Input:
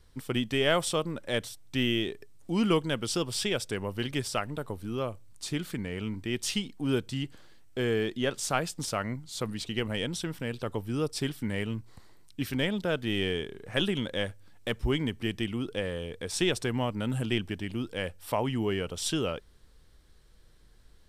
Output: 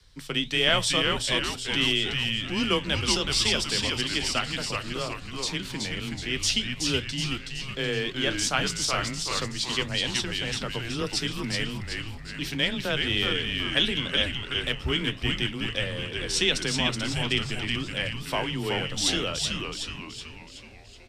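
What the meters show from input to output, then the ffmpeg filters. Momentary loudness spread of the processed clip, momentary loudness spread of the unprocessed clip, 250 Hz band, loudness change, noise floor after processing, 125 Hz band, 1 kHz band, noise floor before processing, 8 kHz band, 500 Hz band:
9 LU, 8 LU, -0.5 dB, +5.0 dB, -43 dBFS, +1.0 dB, +3.0 dB, -57 dBFS, +7.0 dB, -1.0 dB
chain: -filter_complex "[0:a]lowshelf=f=120:g=6,acrossover=split=120|5700[a][b][c];[b]crystalizer=i=9.5:c=0[d];[a][d][c]amix=inputs=3:normalize=0,flanger=delay=7.5:depth=5.7:regen=-71:speed=1.5:shape=sinusoidal,afreqshift=18,asplit=8[e][f][g][h][i][j][k][l];[f]adelay=374,afreqshift=-140,volume=-3.5dB[m];[g]adelay=748,afreqshift=-280,volume=-9.3dB[n];[h]adelay=1122,afreqshift=-420,volume=-15.2dB[o];[i]adelay=1496,afreqshift=-560,volume=-21dB[p];[j]adelay=1870,afreqshift=-700,volume=-26.9dB[q];[k]adelay=2244,afreqshift=-840,volume=-32.7dB[r];[l]adelay=2618,afreqshift=-980,volume=-38.6dB[s];[e][m][n][o][p][q][r][s]amix=inputs=8:normalize=0"

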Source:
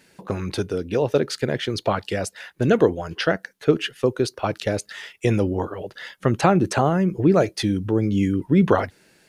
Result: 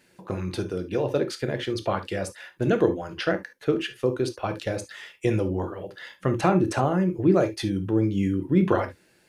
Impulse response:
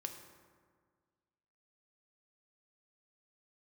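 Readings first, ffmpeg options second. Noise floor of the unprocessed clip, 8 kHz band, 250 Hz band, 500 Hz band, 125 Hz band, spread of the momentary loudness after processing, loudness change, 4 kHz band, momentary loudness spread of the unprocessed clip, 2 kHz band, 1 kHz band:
-58 dBFS, -6.0 dB, -3.0 dB, -3.5 dB, -3.5 dB, 10 LU, -3.5 dB, -5.5 dB, 10 LU, -4.5 dB, -4.0 dB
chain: -filter_complex "[0:a]equalizer=f=5.6k:w=1.5:g=-2.5[a];[1:a]atrim=start_sample=2205,atrim=end_sample=3528[b];[a][b]afir=irnorm=-1:irlink=0,volume=-1.5dB"

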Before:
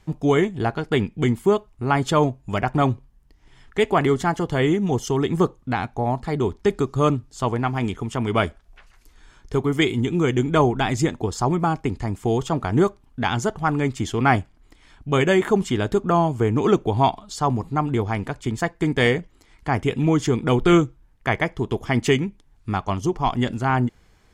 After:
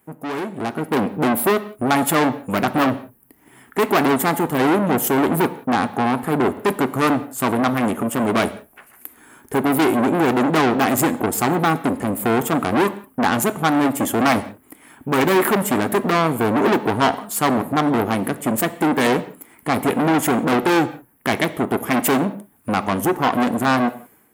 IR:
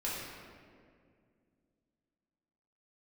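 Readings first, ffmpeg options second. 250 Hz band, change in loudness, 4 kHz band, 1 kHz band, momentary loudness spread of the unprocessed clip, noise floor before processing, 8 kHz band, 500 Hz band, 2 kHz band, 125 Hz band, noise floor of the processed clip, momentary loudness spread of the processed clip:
+4.0 dB, +2.5 dB, +2.5 dB, +4.5 dB, 7 LU, -56 dBFS, +9.0 dB, +1.5 dB, +4.5 dB, -4.5 dB, -54 dBFS, 7 LU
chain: -filter_complex "[0:a]aexciter=amount=13.6:drive=3.2:freq=8.3k,equalizer=f=250:t=o:w=1:g=11,equalizer=f=4k:t=o:w=1:g=-12,equalizer=f=8k:t=o:w=1:g=-9,aeval=exprs='(tanh(12.6*val(0)+0.55)-tanh(0.55))/12.6':c=same,highpass=120,dynaudnorm=f=500:g=3:m=12dB,lowshelf=f=300:g=-11.5,asplit=2[a][b];[1:a]atrim=start_sample=2205,afade=t=out:st=0.35:d=0.01,atrim=end_sample=15876,asetrate=70560,aresample=44100[c];[b][c]afir=irnorm=-1:irlink=0,volume=-11.5dB[d];[a][d]amix=inputs=2:normalize=0"

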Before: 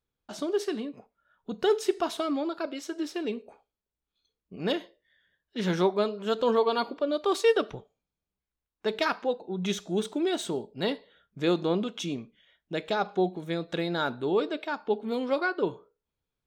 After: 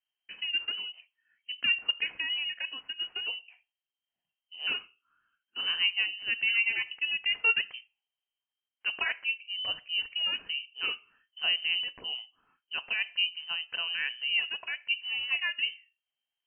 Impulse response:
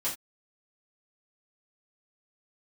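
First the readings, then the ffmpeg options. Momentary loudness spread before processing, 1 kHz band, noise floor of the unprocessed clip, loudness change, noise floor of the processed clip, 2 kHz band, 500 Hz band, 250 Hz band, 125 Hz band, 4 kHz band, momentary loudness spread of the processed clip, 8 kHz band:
10 LU, -15.0 dB, under -85 dBFS, -0.5 dB, under -85 dBFS, +7.5 dB, -27.5 dB, under -25 dB, under -25 dB, +9.5 dB, 11 LU, under -35 dB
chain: -af "lowpass=f=2.7k:t=q:w=0.5098,lowpass=f=2.7k:t=q:w=0.6013,lowpass=f=2.7k:t=q:w=0.9,lowpass=f=2.7k:t=q:w=2.563,afreqshift=-3200,volume=-3.5dB"

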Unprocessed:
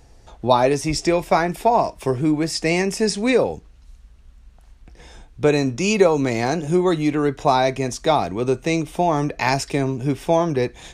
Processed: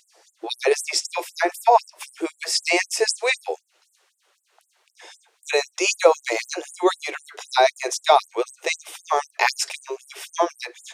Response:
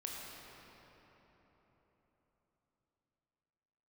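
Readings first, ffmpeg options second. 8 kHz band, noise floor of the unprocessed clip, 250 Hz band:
+3.5 dB, -49 dBFS, -12.5 dB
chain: -af "afftfilt=real='re*gte(b*sr/1024,310*pow(7600/310,0.5+0.5*sin(2*PI*3.9*pts/sr)))':imag='im*gte(b*sr/1024,310*pow(7600/310,0.5+0.5*sin(2*PI*3.9*pts/sr)))':win_size=1024:overlap=0.75,volume=4dB"

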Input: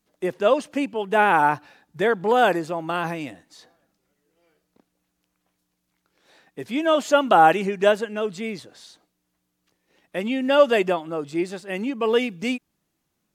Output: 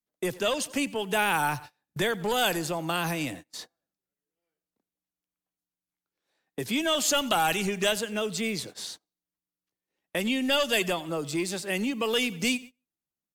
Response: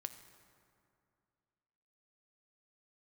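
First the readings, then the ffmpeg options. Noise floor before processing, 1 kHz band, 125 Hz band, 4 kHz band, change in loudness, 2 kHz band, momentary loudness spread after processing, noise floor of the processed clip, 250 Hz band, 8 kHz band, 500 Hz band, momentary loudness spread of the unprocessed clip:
-76 dBFS, -9.5 dB, -0.5 dB, +4.0 dB, -5.5 dB, -3.0 dB, 13 LU, under -85 dBFS, -4.0 dB, +10.5 dB, -9.0 dB, 14 LU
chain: -filter_complex "[0:a]acrossover=split=100|780|4100[a][b][c][d];[b]asoftclip=type=tanh:threshold=-18dB[e];[a][e][c][d]amix=inputs=4:normalize=0,aecho=1:1:92|184|276:0.0794|0.0342|0.0147,acrossover=split=130|3000[f][g][h];[g]acompressor=threshold=-41dB:ratio=2.5[i];[f][i][h]amix=inputs=3:normalize=0,highshelf=f=9.3k:g=9.5,acontrast=88,agate=range=-29dB:threshold=-40dB:ratio=16:detection=peak"

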